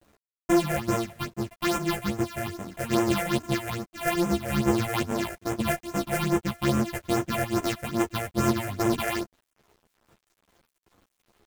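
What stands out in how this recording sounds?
a buzz of ramps at a fixed pitch in blocks of 128 samples; phasing stages 6, 2.4 Hz, lowest notch 260–4300 Hz; a quantiser's noise floor 10-bit, dither none; a shimmering, thickened sound

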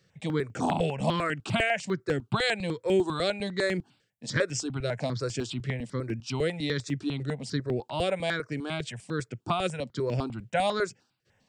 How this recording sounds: notches that jump at a steady rate 10 Hz 250–3900 Hz

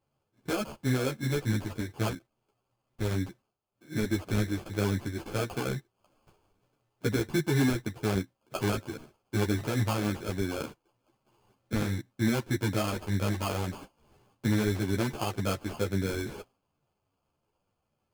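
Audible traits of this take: aliases and images of a low sample rate 1900 Hz, jitter 0%; a shimmering, thickened sound

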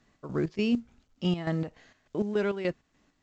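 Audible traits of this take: chopped level 3.4 Hz, depth 65%, duty 55%; µ-law

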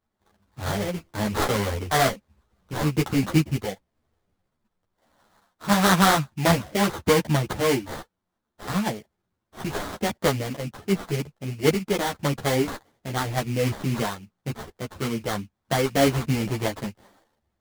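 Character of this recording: aliases and images of a low sample rate 2600 Hz, jitter 20%; a shimmering, thickened sound

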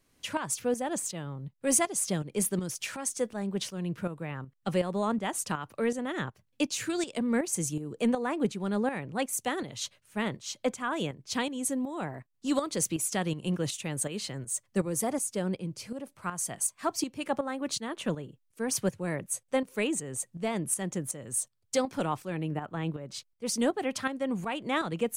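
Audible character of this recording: tremolo saw up 2.7 Hz, depth 65%

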